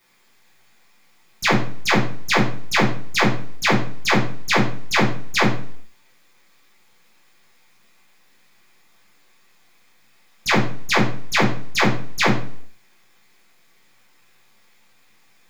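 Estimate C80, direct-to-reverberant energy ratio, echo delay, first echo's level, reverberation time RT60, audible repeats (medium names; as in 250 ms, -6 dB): 11.5 dB, -8.0 dB, no echo, no echo, 0.55 s, no echo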